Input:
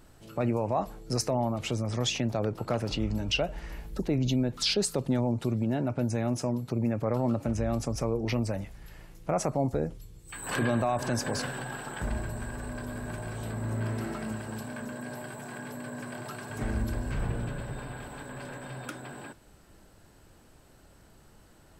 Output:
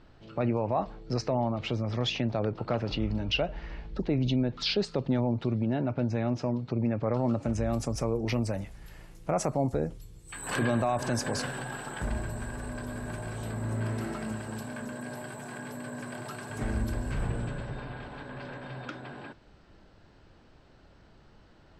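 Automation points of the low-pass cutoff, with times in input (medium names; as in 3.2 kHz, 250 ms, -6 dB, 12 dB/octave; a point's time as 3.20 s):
low-pass 24 dB/octave
7.00 s 4.6 kHz
7.74 s 12 kHz
17.18 s 12 kHz
17.86 s 5 kHz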